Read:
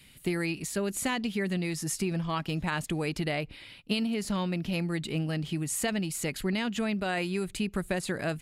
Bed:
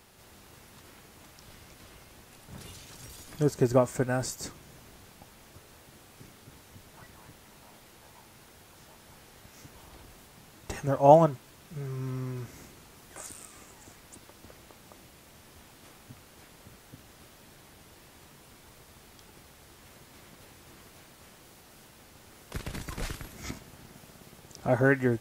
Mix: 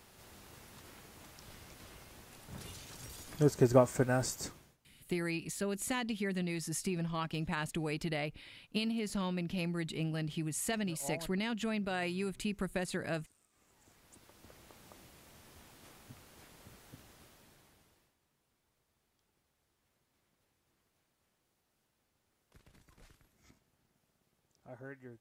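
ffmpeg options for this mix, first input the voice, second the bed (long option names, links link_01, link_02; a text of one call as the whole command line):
ffmpeg -i stem1.wav -i stem2.wav -filter_complex "[0:a]adelay=4850,volume=-5.5dB[link_01];[1:a]volume=19dB,afade=type=out:start_time=4.41:duration=0.36:silence=0.0668344,afade=type=in:start_time=13.5:duration=1.32:silence=0.0891251,afade=type=out:start_time=16.94:duration=1.22:silence=0.0891251[link_02];[link_01][link_02]amix=inputs=2:normalize=0" out.wav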